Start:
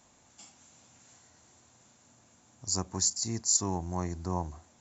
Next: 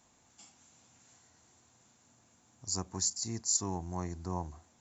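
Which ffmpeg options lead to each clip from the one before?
ffmpeg -i in.wav -af "bandreject=frequency=580:width=12,volume=-4dB" out.wav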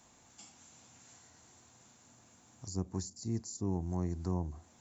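ffmpeg -i in.wav -filter_complex "[0:a]acrossover=split=490[link_01][link_02];[link_02]acompressor=threshold=-55dB:ratio=3[link_03];[link_01][link_03]amix=inputs=2:normalize=0,volume=4dB" out.wav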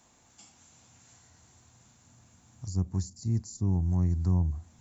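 ffmpeg -i in.wav -af "asubboost=boost=5.5:cutoff=170" out.wav

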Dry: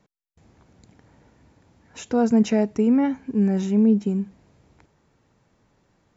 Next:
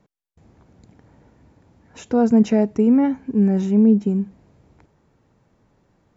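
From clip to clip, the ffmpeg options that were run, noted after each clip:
ffmpeg -i in.wav -af "tiltshelf=frequency=1400:gain=3.5" out.wav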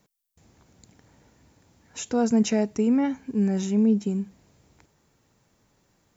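ffmpeg -i in.wav -af "crystalizer=i=6:c=0,volume=-6.5dB" out.wav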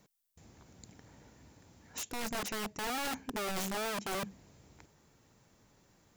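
ffmpeg -i in.wav -af "areverse,acompressor=threshold=-30dB:ratio=12,areverse,aeval=exprs='(mod(37.6*val(0)+1,2)-1)/37.6':channel_layout=same" out.wav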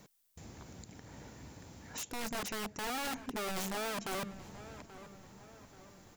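ffmpeg -i in.wav -filter_complex "[0:a]alimiter=level_in=16.5dB:limit=-24dB:level=0:latency=1:release=181,volume=-16.5dB,asplit=2[link_01][link_02];[link_02]adelay=832,lowpass=frequency=2200:poles=1,volume=-14dB,asplit=2[link_03][link_04];[link_04]adelay=832,lowpass=frequency=2200:poles=1,volume=0.52,asplit=2[link_05][link_06];[link_06]adelay=832,lowpass=frequency=2200:poles=1,volume=0.52,asplit=2[link_07][link_08];[link_08]adelay=832,lowpass=frequency=2200:poles=1,volume=0.52,asplit=2[link_09][link_10];[link_10]adelay=832,lowpass=frequency=2200:poles=1,volume=0.52[link_11];[link_01][link_03][link_05][link_07][link_09][link_11]amix=inputs=6:normalize=0,volume=7.5dB" out.wav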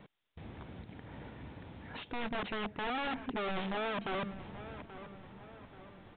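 ffmpeg -i in.wav -af "asoftclip=type=tanh:threshold=-32dB,aresample=8000,aresample=44100,volume=3.5dB" out.wav

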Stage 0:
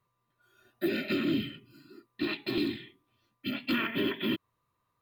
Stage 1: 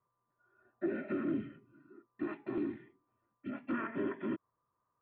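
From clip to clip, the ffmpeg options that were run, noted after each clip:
ffmpeg -i in.wav -af "lowpass=frequency=1500:width=0.5412,lowpass=frequency=1500:width=1.3066,lowshelf=frequency=230:gain=-8.5,volume=-2dB" out.wav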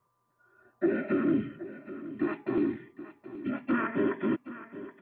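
ffmpeg -i in.wav -af "aecho=1:1:773:0.188,volume=8dB" out.wav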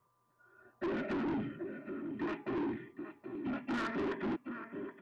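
ffmpeg -i in.wav -af "asoftclip=type=tanh:threshold=-32.5dB" out.wav

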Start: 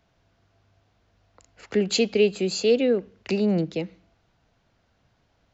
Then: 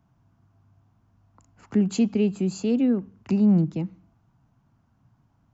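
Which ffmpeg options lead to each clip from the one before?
ffmpeg -i in.wav -af "equalizer=frequency=125:width_type=o:width=1:gain=11,equalizer=frequency=250:width_type=o:width=1:gain=8,equalizer=frequency=500:width_type=o:width=1:gain=-11,equalizer=frequency=1000:width_type=o:width=1:gain=8,equalizer=frequency=2000:width_type=o:width=1:gain=-7,equalizer=frequency=4000:width_type=o:width=1:gain=-11,volume=-3dB" out.wav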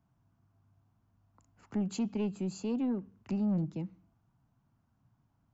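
ffmpeg -i in.wav -af "asoftclip=type=tanh:threshold=-17dB,volume=-8.5dB" out.wav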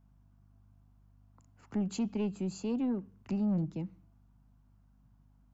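ffmpeg -i in.wav -af "aeval=exprs='val(0)+0.000708*(sin(2*PI*50*n/s)+sin(2*PI*2*50*n/s)/2+sin(2*PI*3*50*n/s)/3+sin(2*PI*4*50*n/s)/4+sin(2*PI*5*50*n/s)/5)':channel_layout=same" out.wav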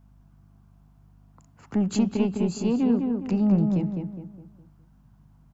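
ffmpeg -i in.wav -filter_complex "[0:a]asplit=2[link_01][link_02];[link_02]adelay=206,lowpass=frequency=1900:poles=1,volume=-4dB,asplit=2[link_03][link_04];[link_04]adelay=206,lowpass=frequency=1900:poles=1,volume=0.41,asplit=2[link_05][link_06];[link_06]adelay=206,lowpass=frequency=1900:poles=1,volume=0.41,asplit=2[link_07][link_08];[link_08]adelay=206,lowpass=frequency=1900:poles=1,volume=0.41,asplit=2[link_09][link_10];[link_10]adelay=206,lowpass=frequency=1900:poles=1,volume=0.41[link_11];[link_01][link_03][link_05][link_07][link_09][link_11]amix=inputs=6:normalize=0,volume=8.5dB" out.wav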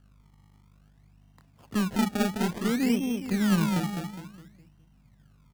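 ffmpeg -i in.wav -af "acrusher=samples=29:mix=1:aa=0.000001:lfo=1:lforange=29:lforate=0.57,volume=-3dB" out.wav

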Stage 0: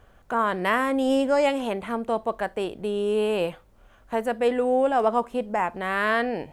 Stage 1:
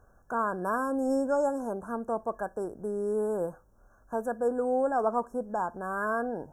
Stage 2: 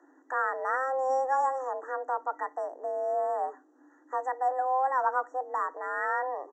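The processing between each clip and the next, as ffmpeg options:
ffmpeg -i in.wav -af "afftfilt=real='re*(1-between(b*sr/4096,1700,5300))':imag='im*(1-between(b*sr/4096,1700,5300))':win_size=4096:overlap=0.75,volume=-5.5dB" out.wav
ffmpeg -i in.wav -af "aresample=16000,aresample=44100,afreqshift=260" out.wav

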